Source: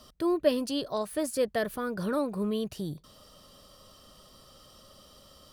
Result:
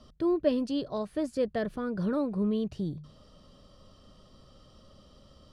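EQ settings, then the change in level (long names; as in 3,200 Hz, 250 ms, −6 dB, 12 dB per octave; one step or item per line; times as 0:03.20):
low-pass filter 5,600 Hz 12 dB per octave
low-shelf EQ 400 Hz +11.5 dB
mains-hum notches 50/100/150 Hz
−6.0 dB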